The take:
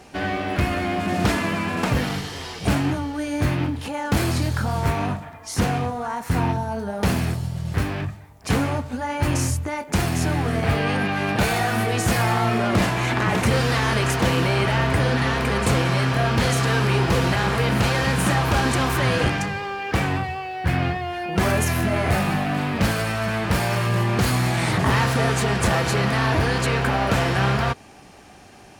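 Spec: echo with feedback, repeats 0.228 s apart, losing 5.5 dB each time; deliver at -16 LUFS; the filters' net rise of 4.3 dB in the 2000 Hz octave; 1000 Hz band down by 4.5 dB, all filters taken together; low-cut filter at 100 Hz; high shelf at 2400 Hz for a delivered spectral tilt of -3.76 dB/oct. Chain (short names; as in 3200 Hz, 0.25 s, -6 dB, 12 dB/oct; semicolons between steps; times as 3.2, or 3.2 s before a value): HPF 100 Hz; bell 1000 Hz -9 dB; bell 2000 Hz +5 dB; high shelf 2400 Hz +6.5 dB; feedback echo 0.228 s, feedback 53%, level -5.5 dB; gain +3.5 dB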